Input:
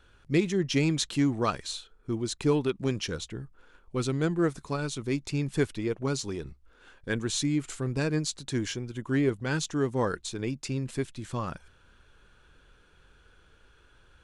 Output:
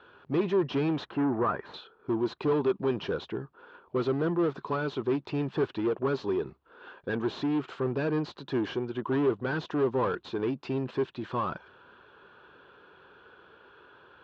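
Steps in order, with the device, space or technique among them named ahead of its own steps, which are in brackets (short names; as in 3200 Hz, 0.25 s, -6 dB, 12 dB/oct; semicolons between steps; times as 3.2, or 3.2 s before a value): overdrive pedal into a guitar cabinet (overdrive pedal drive 27 dB, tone 1100 Hz, clips at -12.5 dBFS; speaker cabinet 90–4000 Hz, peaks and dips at 390 Hz +5 dB, 1000 Hz +4 dB, 2100 Hz -8 dB); 1.05–1.74 resonant high shelf 2500 Hz -12.5 dB, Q 1.5; gain -7.5 dB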